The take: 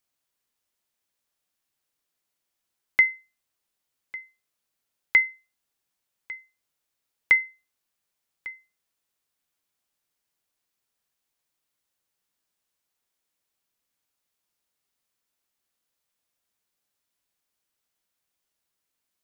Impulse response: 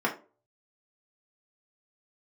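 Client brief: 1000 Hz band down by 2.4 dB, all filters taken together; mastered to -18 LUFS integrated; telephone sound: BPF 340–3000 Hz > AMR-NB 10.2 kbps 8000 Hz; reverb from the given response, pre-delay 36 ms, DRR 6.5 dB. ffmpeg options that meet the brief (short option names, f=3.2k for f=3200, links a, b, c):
-filter_complex "[0:a]equalizer=f=1k:t=o:g=-3,asplit=2[a][b];[1:a]atrim=start_sample=2205,adelay=36[c];[b][c]afir=irnorm=-1:irlink=0,volume=-17.5dB[d];[a][d]amix=inputs=2:normalize=0,highpass=340,lowpass=3k,volume=6dB" -ar 8000 -c:a libopencore_amrnb -b:a 10200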